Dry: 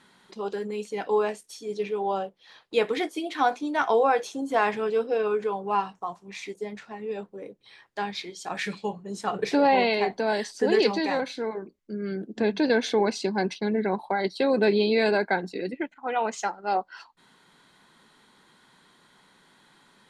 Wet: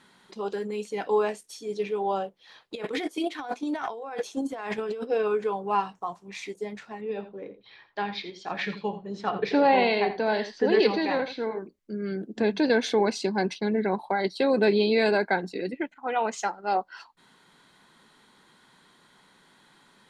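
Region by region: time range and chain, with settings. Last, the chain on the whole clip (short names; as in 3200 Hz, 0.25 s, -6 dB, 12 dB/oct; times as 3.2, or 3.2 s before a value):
2.75–5.1 gate -32 dBFS, range -10 dB + negative-ratio compressor -32 dBFS
7.01–11.59 LPF 4600 Hz 24 dB/oct + echo 83 ms -12.5 dB
whole clip: dry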